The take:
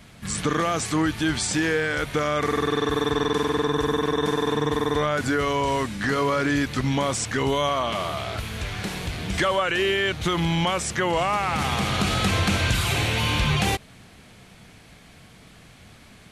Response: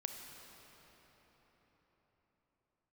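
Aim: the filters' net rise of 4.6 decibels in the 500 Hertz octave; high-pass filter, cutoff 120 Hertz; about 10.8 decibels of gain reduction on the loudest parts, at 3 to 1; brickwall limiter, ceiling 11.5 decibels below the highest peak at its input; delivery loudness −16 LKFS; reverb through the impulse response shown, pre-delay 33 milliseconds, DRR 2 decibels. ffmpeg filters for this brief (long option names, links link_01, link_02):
-filter_complex "[0:a]highpass=120,equalizer=frequency=500:width_type=o:gain=5.5,acompressor=threshold=-31dB:ratio=3,alimiter=level_in=4dB:limit=-24dB:level=0:latency=1,volume=-4dB,asplit=2[link_01][link_02];[1:a]atrim=start_sample=2205,adelay=33[link_03];[link_02][link_03]afir=irnorm=-1:irlink=0,volume=-1dB[link_04];[link_01][link_04]amix=inputs=2:normalize=0,volume=19dB"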